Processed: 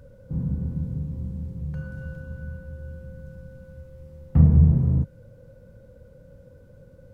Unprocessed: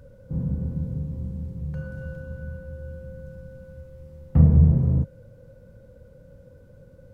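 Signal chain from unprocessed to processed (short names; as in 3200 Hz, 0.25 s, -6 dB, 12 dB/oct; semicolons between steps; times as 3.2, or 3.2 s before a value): dynamic EQ 540 Hz, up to -5 dB, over -49 dBFS, Q 2.4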